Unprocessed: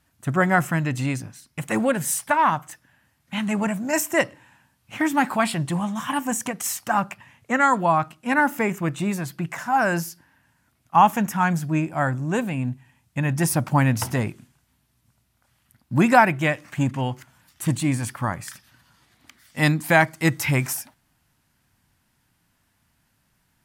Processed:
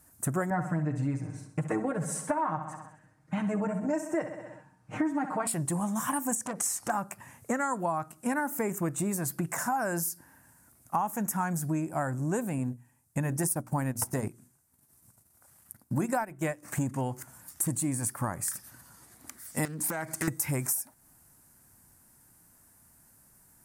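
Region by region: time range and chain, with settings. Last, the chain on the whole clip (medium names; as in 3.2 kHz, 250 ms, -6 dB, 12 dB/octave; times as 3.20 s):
0.50–5.47 s: tape spacing loss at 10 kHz 26 dB + comb 6.5 ms, depth 87% + feedback delay 65 ms, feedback 52%, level -11 dB
6.35–6.90 s: upward compressor, threshold -31 dBFS + distance through air 55 m + transformer saturation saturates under 1.5 kHz
12.58–16.63 s: hum notches 60/120/180/240/300/360 Hz + transient shaper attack 0 dB, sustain -11 dB
19.65–20.28 s: peaking EQ 3.4 kHz +5 dB 1.9 oct + compression 12:1, threshold -26 dBFS + loudspeaker Doppler distortion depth 0.42 ms
whole clip: FFT filter 160 Hz 0 dB, 410 Hz +4 dB, 1.6 kHz -1 dB, 3.2 kHz -11 dB, 8.8 kHz +13 dB, 14 kHz +11 dB; compression 6:1, threshold -30 dBFS; trim +2 dB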